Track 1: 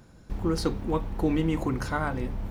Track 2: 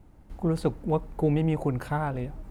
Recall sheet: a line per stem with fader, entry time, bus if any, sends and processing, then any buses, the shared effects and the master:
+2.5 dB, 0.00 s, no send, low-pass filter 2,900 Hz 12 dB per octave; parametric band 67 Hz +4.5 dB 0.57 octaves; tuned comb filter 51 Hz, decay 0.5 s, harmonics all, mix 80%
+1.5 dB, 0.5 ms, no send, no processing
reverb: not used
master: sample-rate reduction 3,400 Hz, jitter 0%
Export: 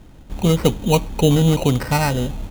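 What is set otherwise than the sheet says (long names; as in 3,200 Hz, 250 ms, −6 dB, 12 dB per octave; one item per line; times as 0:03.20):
stem 1: missing tuned comb filter 51 Hz, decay 0.5 s, harmonics all, mix 80%
stem 2 +1.5 dB → +9.0 dB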